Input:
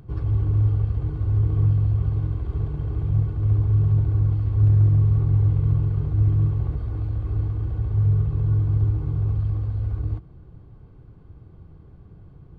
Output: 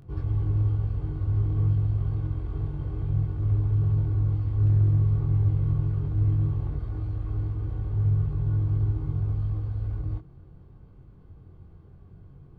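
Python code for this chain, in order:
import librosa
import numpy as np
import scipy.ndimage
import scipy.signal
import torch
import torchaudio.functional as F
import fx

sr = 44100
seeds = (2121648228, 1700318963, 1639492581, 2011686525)

y = fx.doubler(x, sr, ms=22.0, db=-3.0)
y = F.gain(torch.from_numpy(y), -5.0).numpy()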